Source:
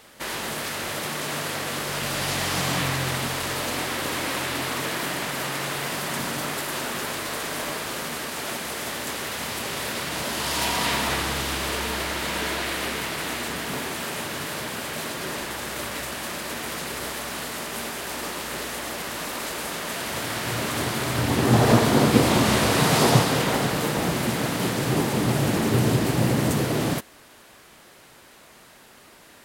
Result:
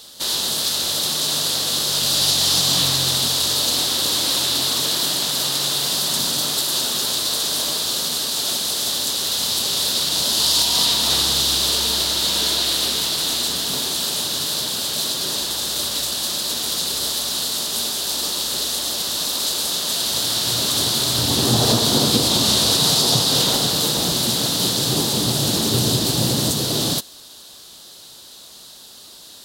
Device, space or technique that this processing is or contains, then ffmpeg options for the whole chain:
over-bright horn tweeter: -af "highshelf=frequency=2900:width_type=q:width=3:gain=10,alimiter=limit=-6dB:level=0:latency=1:release=227"

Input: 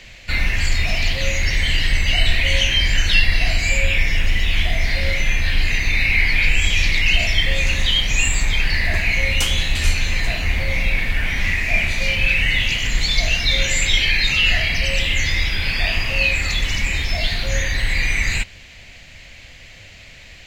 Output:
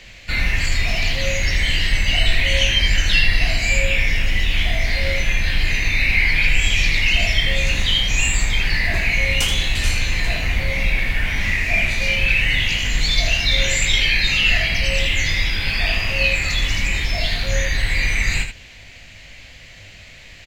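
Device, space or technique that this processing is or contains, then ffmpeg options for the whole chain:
slapback doubling: -filter_complex "[0:a]asplit=3[link_01][link_02][link_03];[link_02]adelay=20,volume=-8dB[link_04];[link_03]adelay=81,volume=-8dB[link_05];[link_01][link_04][link_05]amix=inputs=3:normalize=0,volume=-1dB"

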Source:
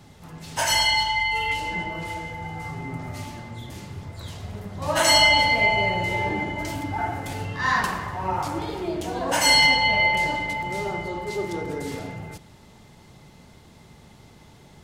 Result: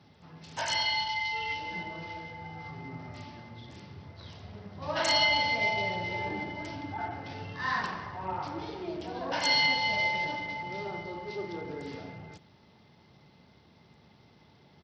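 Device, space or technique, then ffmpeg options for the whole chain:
Bluetooth headset: -af "highpass=120,equalizer=frequency=68:width=1.5:gain=5.5,aresample=16000,aresample=44100,volume=-8.5dB" -ar 44100 -c:a sbc -b:a 64k

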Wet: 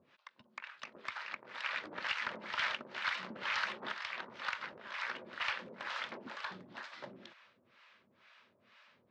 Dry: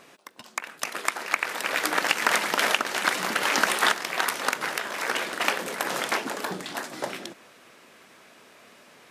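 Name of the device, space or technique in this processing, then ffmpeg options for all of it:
guitar amplifier with harmonic tremolo: -filter_complex "[0:a]acrossover=split=640[link_01][link_02];[link_01]aeval=exprs='val(0)*(1-1/2+1/2*cos(2*PI*2.1*n/s))':channel_layout=same[link_03];[link_02]aeval=exprs='val(0)*(1-1/2-1/2*cos(2*PI*2.1*n/s))':channel_layout=same[link_04];[link_03][link_04]amix=inputs=2:normalize=0,asoftclip=type=tanh:threshold=-19.5dB,highpass=81,equalizer=frequency=93:width_type=q:width=4:gain=6,equalizer=frequency=160:width_type=q:width=4:gain=-5,equalizer=frequency=300:width_type=q:width=4:gain=-10,equalizer=frequency=440:width_type=q:width=4:gain=-9,equalizer=frequency=730:width_type=q:width=4:gain=-9,lowpass=frequency=4300:width=0.5412,lowpass=frequency=4300:width=1.3066,volume=-6dB"

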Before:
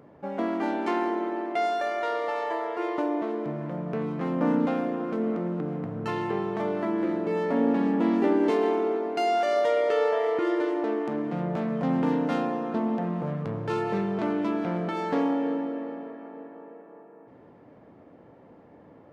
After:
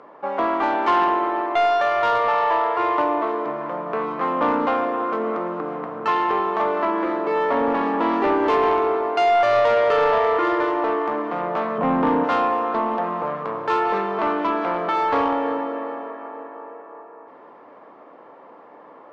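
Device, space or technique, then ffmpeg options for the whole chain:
intercom: -filter_complex "[0:a]asettb=1/sr,asplit=3[link_01][link_02][link_03];[link_01]atrim=end=11.784[link_04];[link_02]atrim=start=11.78:end=12.24,asetpts=PTS-STARTPTS,afade=type=in:duration=0.004:curve=qsin,afade=type=out:start_time=0.456:duration=0.004:curve=qsin,aemphasis=mode=reproduction:type=riaa[link_05];[link_03]atrim=start=12.236[link_06];[link_04][link_05]acrossfade=duration=0.004:curve1=hsin:curve2=qsin[link_07];[link_07][link_06]acrossfade=duration=0.004:curve1=qsin:curve2=hsin,highpass=450,lowpass=4600,equalizer=frequency=1100:width_type=o:width=0.58:gain=10,asoftclip=type=tanh:threshold=-20dB,volume=8.5dB"

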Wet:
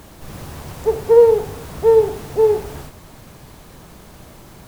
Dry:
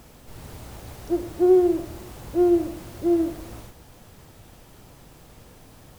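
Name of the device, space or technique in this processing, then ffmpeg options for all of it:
nightcore: -af "asetrate=56448,aresample=44100,volume=7dB"

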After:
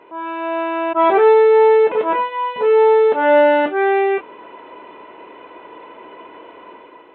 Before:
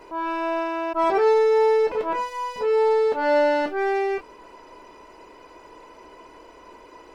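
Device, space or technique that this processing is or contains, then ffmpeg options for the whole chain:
Bluetooth headset: -af "highpass=170,dynaudnorm=framelen=170:gausssize=7:maxgain=8dB,aresample=8000,aresample=44100" -ar 16000 -c:a sbc -b:a 64k

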